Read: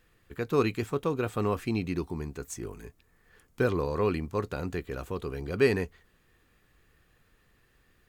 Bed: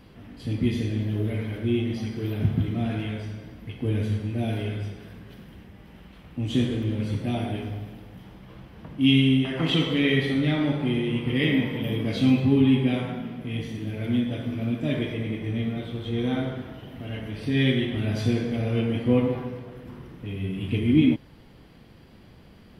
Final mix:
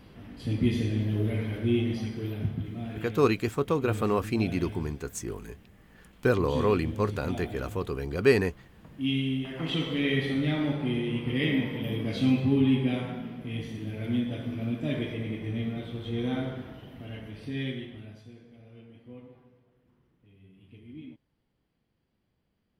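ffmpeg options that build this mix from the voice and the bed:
ffmpeg -i stem1.wav -i stem2.wav -filter_complex "[0:a]adelay=2650,volume=2.5dB[link_01];[1:a]volume=4.5dB,afade=type=out:start_time=1.88:duration=0.73:silence=0.375837,afade=type=in:start_time=9.38:duration=0.9:silence=0.530884,afade=type=out:start_time=16.69:duration=1.55:silence=0.0794328[link_02];[link_01][link_02]amix=inputs=2:normalize=0" out.wav

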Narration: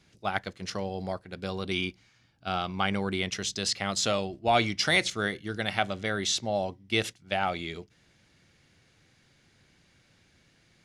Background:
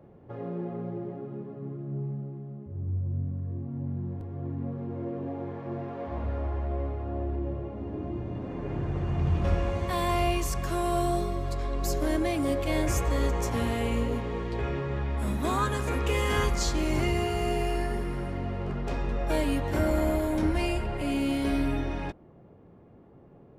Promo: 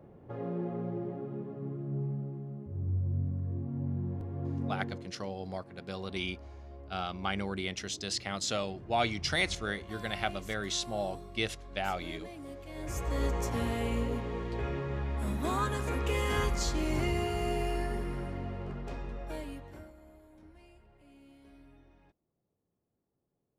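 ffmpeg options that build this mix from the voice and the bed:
ffmpeg -i stem1.wav -i stem2.wav -filter_complex "[0:a]adelay=4450,volume=-5.5dB[link_01];[1:a]volume=12.5dB,afade=type=out:start_time=4.77:duration=0.31:silence=0.149624,afade=type=in:start_time=12.74:duration=0.51:silence=0.211349,afade=type=out:start_time=18.13:duration=1.8:silence=0.0501187[link_02];[link_01][link_02]amix=inputs=2:normalize=0" out.wav

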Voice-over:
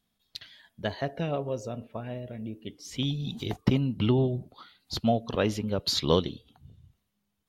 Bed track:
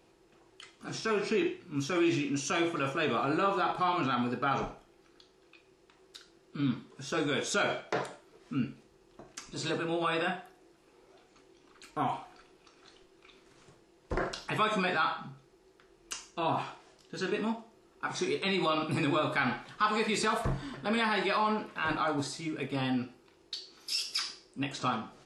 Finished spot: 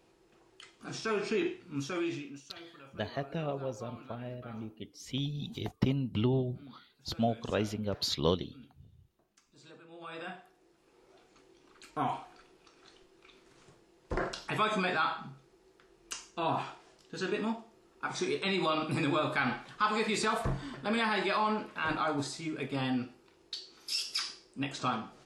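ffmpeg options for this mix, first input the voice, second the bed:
ffmpeg -i stem1.wav -i stem2.wav -filter_complex "[0:a]adelay=2150,volume=-5dB[link_01];[1:a]volume=18.5dB,afade=type=out:start_time=1.71:duration=0.74:silence=0.105925,afade=type=in:start_time=9.9:duration=1.34:silence=0.0944061[link_02];[link_01][link_02]amix=inputs=2:normalize=0" out.wav

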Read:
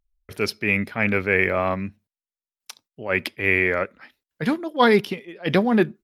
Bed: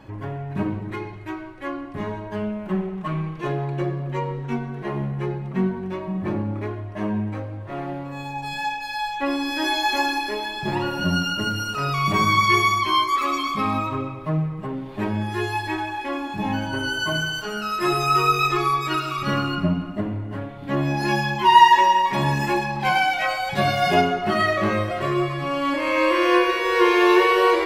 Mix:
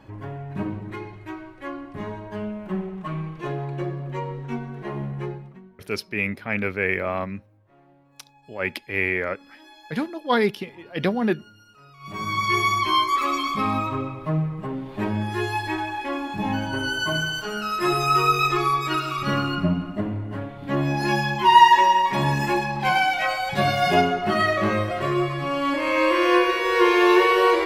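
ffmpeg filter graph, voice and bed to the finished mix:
ffmpeg -i stem1.wav -i stem2.wav -filter_complex "[0:a]adelay=5500,volume=-4dB[link_01];[1:a]volume=22dB,afade=type=out:start_time=5.24:duration=0.36:silence=0.0749894,afade=type=in:start_time=11.99:duration=0.84:silence=0.0530884[link_02];[link_01][link_02]amix=inputs=2:normalize=0" out.wav

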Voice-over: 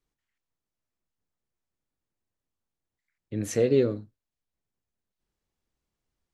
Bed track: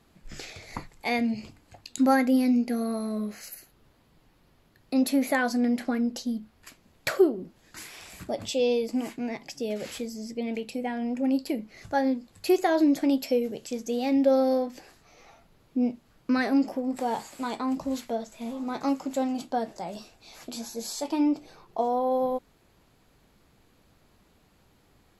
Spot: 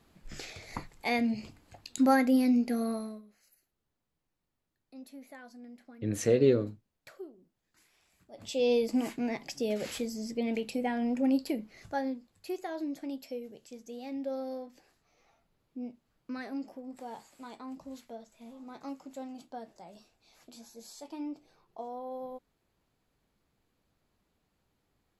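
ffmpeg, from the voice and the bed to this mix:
ffmpeg -i stem1.wav -i stem2.wav -filter_complex "[0:a]adelay=2700,volume=-1.5dB[link_01];[1:a]volume=21.5dB,afade=type=out:start_time=2.89:duration=0.33:silence=0.0794328,afade=type=in:start_time=8.31:duration=0.45:silence=0.0630957,afade=type=out:start_time=11.1:duration=1.27:silence=0.199526[link_02];[link_01][link_02]amix=inputs=2:normalize=0" out.wav

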